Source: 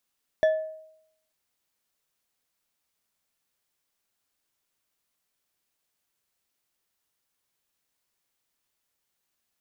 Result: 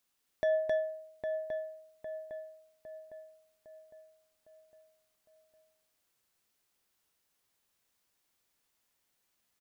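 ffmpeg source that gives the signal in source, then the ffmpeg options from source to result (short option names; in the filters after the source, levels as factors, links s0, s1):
-f lavfi -i "aevalsrc='0.168*pow(10,-3*t/0.76)*sin(2*PI*631*t)+0.0447*pow(10,-3*t/0.374)*sin(2*PI*1739.7*t)+0.0119*pow(10,-3*t/0.233)*sin(2*PI*3409.9*t)+0.00316*pow(10,-3*t/0.164)*sin(2*PI*5636.7*t)+0.000841*pow(10,-3*t/0.124)*sin(2*PI*8417.5*t)':d=0.89:s=44100"
-filter_complex "[0:a]asplit=2[s0][s1];[s1]aecho=0:1:265:0.531[s2];[s0][s2]amix=inputs=2:normalize=0,alimiter=limit=0.0708:level=0:latency=1:release=54,asplit=2[s3][s4];[s4]adelay=807,lowpass=f=2200:p=1,volume=0.501,asplit=2[s5][s6];[s6]adelay=807,lowpass=f=2200:p=1,volume=0.5,asplit=2[s7][s8];[s8]adelay=807,lowpass=f=2200:p=1,volume=0.5,asplit=2[s9][s10];[s10]adelay=807,lowpass=f=2200:p=1,volume=0.5,asplit=2[s11][s12];[s12]adelay=807,lowpass=f=2200:p=1,volume=0.5,asplit=2[s13][s14];[s14]adelay=807,lowpass=f=2200:p=1,volume=0.5[s15];[s5][s7][s9][s11][s13][s15]amix=inputs=6:normalize=0[s16];[s3][s16]amix=inputs=2:normalize=0"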